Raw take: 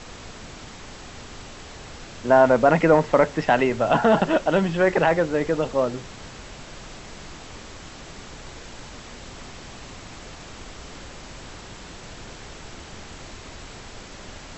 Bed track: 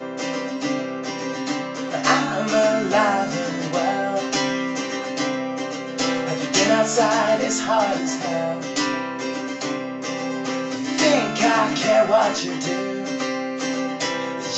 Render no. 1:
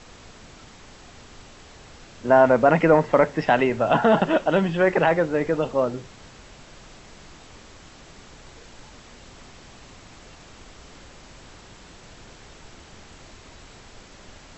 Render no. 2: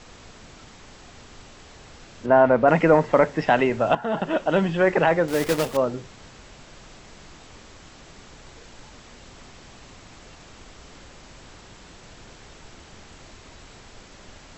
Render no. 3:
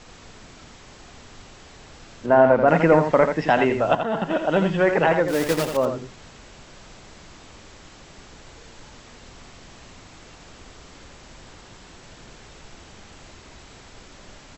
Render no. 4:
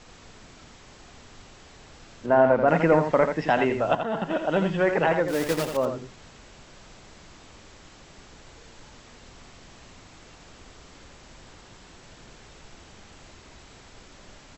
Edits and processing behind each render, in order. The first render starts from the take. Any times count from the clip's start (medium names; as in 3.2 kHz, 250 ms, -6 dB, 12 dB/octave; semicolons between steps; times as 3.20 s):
noise print and reduce 6 dB
2.26–2.68 s: distance through air 190 m; 3.95–4.59 s: fade in, from -15.5 dB; 5.28–5.77 s: block-companded coder 3-bit
delay 84 ms -7 dB
trim -3.5 dB